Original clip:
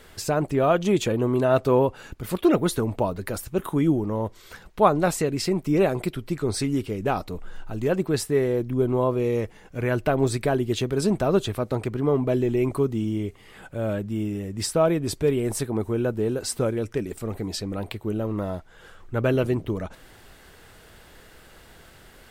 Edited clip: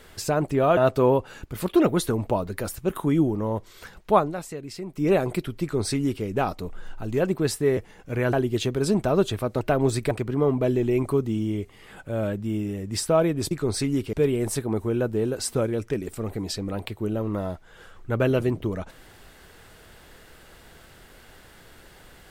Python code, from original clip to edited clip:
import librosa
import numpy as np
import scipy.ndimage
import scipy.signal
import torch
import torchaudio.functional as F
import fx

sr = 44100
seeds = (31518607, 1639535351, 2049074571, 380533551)

y = fx.edit(x, sr, fx.cut(start_s=0.77, length_s=0.69),
    fx.fade_down_up(start_s=4.82, length_s=0.98, db=-11.0, fade_s=0.22),
    fx.duplicate(start_s=6.31, length_s=0.62, to_s=15.17),
    fx.cut(start_s=8.46, length_s=0.97),
    fx.move(start_s=9.99, length_s=0.5, to_s=11.77), tone=tone)